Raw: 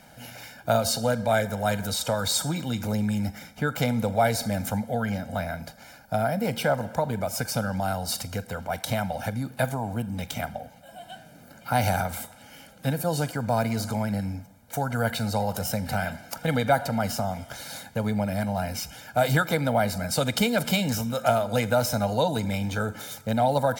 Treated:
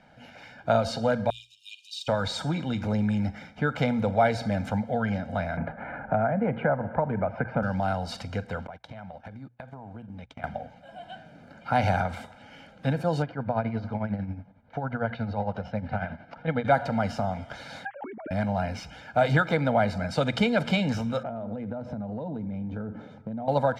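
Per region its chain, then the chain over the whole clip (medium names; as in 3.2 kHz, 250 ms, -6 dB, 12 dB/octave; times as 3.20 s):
1.30–2.08 s: brick-wall FIR high-pass 2.4 kHz + careless resampling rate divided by 2×, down filtered, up hold
5.57–7.63 s: low-pass 2 kHz 24 dB/octave + three bands compressed up and down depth 70%
8.67–10.44 s: gate -33 dBFS, range -30 dB + treble shelf 5.5 kHz -9 dB + compression 20:1, threshold -37 dBFS
13.22–16.65 s: tremolo 11 Hz, depth 64% + distance through air 270 m
17.85–18.31 s: formants replaced by sine waves + distance through air 400 m + compressor with a negative ratio -39 dBFS
21.23–23.48 s: FFT filter 120 Hz 0 dB, 210 Hz +6 dB, 11 kHz -27 dB + compression 12:1, threshold -30 dBFS
whole clip: low-pass 3.1 kHz 12 dB/octave; hum notches 60/120 Hz; level rider gain up to 5 dB; trim -4.5 dB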